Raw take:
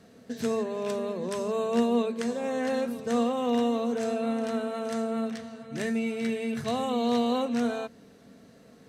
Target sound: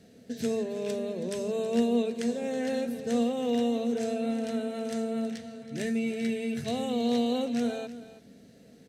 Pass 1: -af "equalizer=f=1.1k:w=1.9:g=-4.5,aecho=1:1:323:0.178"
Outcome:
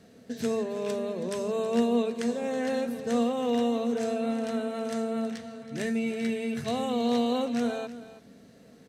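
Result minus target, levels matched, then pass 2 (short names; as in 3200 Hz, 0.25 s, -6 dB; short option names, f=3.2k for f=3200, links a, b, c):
1000 Hz band +3.0 dB
-af "equalizer=f=1.1k:w=1.9:g=-15,aecho=1:1:323:0.178"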